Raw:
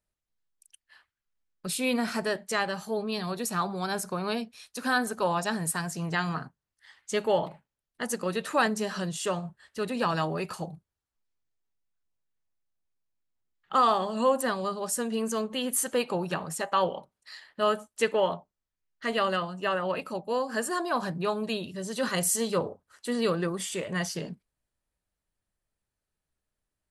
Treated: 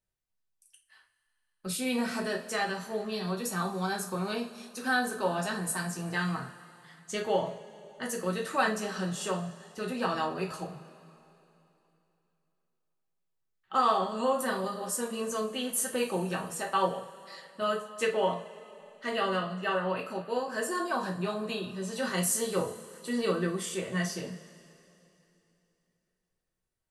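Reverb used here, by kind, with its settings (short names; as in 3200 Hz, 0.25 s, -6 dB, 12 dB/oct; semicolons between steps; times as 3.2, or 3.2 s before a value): two-slope reverb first 0.3 s, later 3.1 s, from -21 dB, DRR -0.5 dB; gain -5.5 dB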